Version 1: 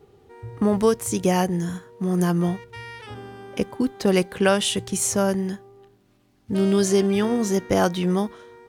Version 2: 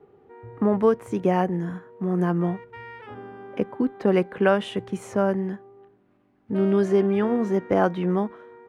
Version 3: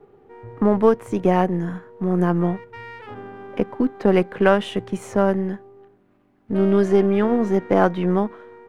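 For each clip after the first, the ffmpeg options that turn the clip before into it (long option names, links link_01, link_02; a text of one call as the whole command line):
ffmpeg -i in.wav -filter_complex "[0:a]acrossover=split=150 2300:gain=0.251 1 0.0631[link_01][link_02][link_03];[link_01][link_02][link_03]amix=inputs=3:normalize=0" out.wav
ffmpeg -i in.wav -af "aeval=exprs='if(lt(val(0),0),0.708*val(0),val(0))':channel_layout=same,volume=4.5dB" out.wav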